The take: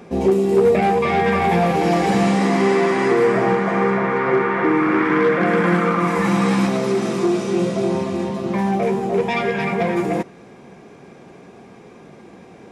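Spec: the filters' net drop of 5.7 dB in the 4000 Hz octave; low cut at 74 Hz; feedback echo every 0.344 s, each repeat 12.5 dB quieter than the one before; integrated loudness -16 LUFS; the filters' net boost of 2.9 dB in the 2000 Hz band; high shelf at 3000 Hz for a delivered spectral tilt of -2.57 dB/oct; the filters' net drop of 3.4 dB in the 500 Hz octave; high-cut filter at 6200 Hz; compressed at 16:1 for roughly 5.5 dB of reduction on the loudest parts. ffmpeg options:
-af "highpass=74,lowpass=6.2k,equalizer=f=500:t=o:g=-4.5,equalizer=f=2k:t=o:g=7.5,highshelf=f=3k:g=-9,equalizer=f=4k:t=o:g=-3.5,acompressor=threshold=-19dB:ratio=16,aecho=1:1:344|688|1032:0.237|0.0569|0.0137,volume=7.5dB"

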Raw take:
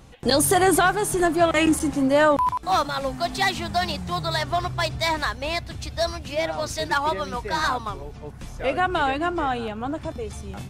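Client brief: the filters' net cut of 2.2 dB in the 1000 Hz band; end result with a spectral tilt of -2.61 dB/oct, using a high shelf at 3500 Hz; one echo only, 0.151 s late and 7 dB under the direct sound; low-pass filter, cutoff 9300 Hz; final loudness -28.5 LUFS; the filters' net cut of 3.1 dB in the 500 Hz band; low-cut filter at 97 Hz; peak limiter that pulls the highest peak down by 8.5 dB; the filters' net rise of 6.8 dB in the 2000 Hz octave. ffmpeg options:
-af "highpass=97,lowpass=9.3k,equalizer=f=500:t=o:g=-3.5,equalizer=f=1k:t=o:g=-4.5,equalizer=f=2k:t=o:g=8.5,highshelf=f=3.5k:g=7,alimiter=limit=-12.5dB:level=0:latency=1,aecho=1:1:151:0.447,volume=-5.5dB"

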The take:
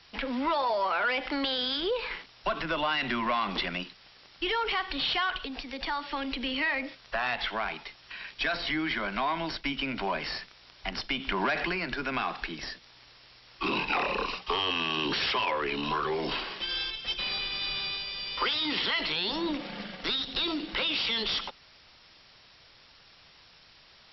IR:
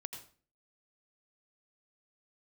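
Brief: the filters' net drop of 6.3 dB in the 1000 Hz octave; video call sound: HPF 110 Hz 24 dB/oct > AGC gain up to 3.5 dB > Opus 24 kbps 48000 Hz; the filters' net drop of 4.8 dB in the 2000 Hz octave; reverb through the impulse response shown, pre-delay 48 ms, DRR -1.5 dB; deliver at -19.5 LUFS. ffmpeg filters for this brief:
-filter_complex "[0:a]equalizer=f=1k:t=o:g=-6.5,equalizer=f=2k:t=o:g=-4.5,asplit=2[a][b];[1:a]atrim=start_sample=2205,adelay=48[c];[b][c]afir=irnorm=-1:irlink=0,volume=4dB[d];[a][d]amix=inputs=2:normalize=0,highpass=f=110:w=0.5412,highpass=f=110:w=1.3066,dynaudnorm=m=3.5dB,volume=8dB" -ar 48000 -c:a libopus -b:a 24k

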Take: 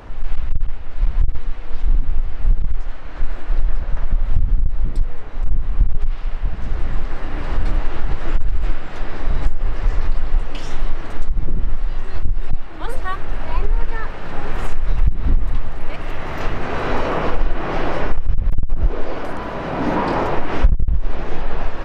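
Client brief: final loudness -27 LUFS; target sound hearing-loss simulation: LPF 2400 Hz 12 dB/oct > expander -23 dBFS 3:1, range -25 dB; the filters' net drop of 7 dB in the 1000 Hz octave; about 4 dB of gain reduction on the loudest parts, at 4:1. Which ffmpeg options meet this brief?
-af "equalizer=f=1k:t=o:g=-9,acompressor=threshold=-11dB:ratio=4,lowpass=2.4k,agate=range=-25dB:threshold=-23dB:ratio=3,volume=1.5dB"

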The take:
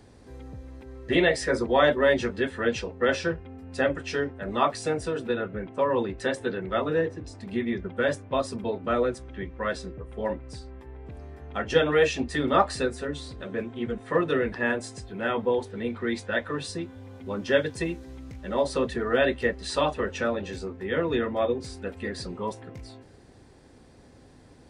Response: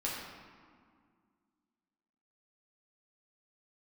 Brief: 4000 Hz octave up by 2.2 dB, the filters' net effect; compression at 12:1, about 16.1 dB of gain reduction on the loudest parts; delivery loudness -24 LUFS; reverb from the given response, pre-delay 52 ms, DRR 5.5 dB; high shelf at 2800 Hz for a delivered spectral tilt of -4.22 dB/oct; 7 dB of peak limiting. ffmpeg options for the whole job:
-filter_complex "[0:a]highshelf=f=2.8k:g=-3,equalizer=f=4k:t=o:g=5,acompressor=threshold=-32dB:ratio=12,alimiter=level_in=4dB:limit=-24dB:level=0:latency=1,volume=-4dB,asplit=2[a][b];[1:a]atrim=start_sample=2205,adelay=52[c];[b][c]afir=irnorm=-1:irlink=0,volume=-10dB[d];[a][d]amix=inputs=2:normalize=0,volume=14dB"

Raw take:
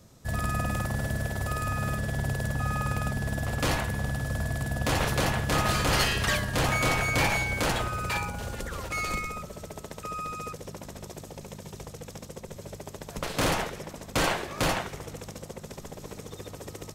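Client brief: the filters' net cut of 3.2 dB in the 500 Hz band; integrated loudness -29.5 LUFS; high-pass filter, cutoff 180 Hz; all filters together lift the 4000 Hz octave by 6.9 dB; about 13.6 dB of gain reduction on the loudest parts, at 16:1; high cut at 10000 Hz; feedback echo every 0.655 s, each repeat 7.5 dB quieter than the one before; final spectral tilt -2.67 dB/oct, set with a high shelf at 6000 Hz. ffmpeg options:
-af "highpass=180,lowpass=10k,equalizer=f=500:t=o:g=-4,equalizer=f=4k:t=o:g=7.5,highshelf=f=6k:g=4,acompressor=threshold=-30dB:ratio=16,aecho=1:1:655|1310|1965|2620|3275:0.422|0.177|0.0744|0.0312|0.0131,volume=4.5dB"

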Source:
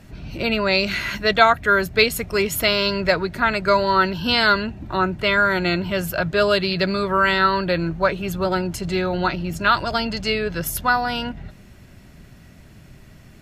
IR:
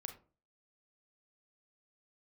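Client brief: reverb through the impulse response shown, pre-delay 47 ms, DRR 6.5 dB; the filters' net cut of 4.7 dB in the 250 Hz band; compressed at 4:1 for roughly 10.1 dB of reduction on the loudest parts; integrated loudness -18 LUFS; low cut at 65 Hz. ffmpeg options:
-filter_complex "[0:a]highpass=65,equalizer=f=250:t=o:g=-7.5,acompressor=threshold=-21dB:ratio=4,asplit=2[a][b];[1:a]atrim=start_sample=2205,adelay=47[c];[b][c]afir=irnorm=-1:irlink=0,volume=-3dB[d];[a][d]amix=inputs=2:normalize=0,volume=6.5dB"

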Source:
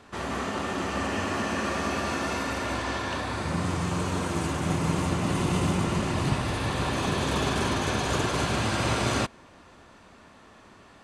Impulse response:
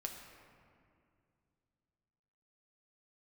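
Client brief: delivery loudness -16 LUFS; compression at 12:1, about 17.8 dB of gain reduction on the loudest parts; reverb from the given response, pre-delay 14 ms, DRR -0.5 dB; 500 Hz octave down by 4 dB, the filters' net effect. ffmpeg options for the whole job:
-filter_complex "[0:a]equalizer=f=500:t=o:g=-5.5,acompressor=threshold=-40dB:ratio=12,asplit=2[a][b];[1:a]atrim=start_sample=2205,adelay=14[c];[b][c]afir=irnorm=-1:irlink=0,volume=2dB[d];[a][d]amix=inputs=2:normalize=0,volume=24.5dB"

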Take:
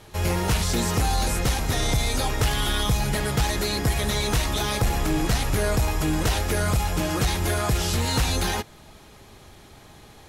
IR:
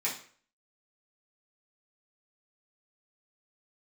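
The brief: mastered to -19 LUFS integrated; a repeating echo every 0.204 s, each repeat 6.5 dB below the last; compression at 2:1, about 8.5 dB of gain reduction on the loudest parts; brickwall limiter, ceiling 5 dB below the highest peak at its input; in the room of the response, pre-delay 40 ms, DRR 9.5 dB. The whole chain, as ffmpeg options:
-filter_complex "[0:a]acompressor=threshold=-34dB:ratio=2,alimiter=level_in=1dB:limit=-24dB:level=0:latency=1,volume=-1dB,aecho=1:1:204|408|612|816|1020|1224:0.473|0.222|0.105|0.0491|0.0231|0.0109,asplit=2[a][b];[1:a]atrim=start_sample=2205,adelay=40[c];[b][c]afir=irnorm=-1:irlink=0,volume=-16dB[d];[a][d]amix=inputs=2:normalize=0,volume=13.5dB"

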